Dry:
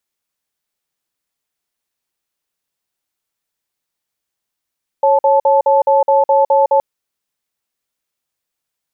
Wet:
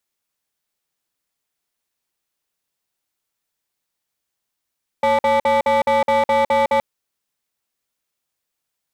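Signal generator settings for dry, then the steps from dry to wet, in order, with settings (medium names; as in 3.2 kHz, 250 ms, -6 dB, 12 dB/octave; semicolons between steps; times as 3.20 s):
cadence 551 Hz, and 871 Hz, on 0.16 s, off 0.05 s, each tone -11 dBFS 1.77 s
hard clipper -14 dBFS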